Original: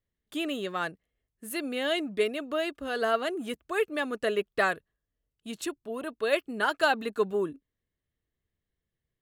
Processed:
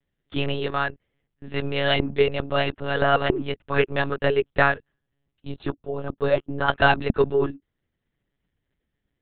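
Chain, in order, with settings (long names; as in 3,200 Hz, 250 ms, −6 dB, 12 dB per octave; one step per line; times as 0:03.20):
0:05.48–0:06.68: parametric band 2,400 Hz −11 dB 1.6 octaves
one-pitch LPC vocoder at 8 kHz 140 Hz
level +7 dB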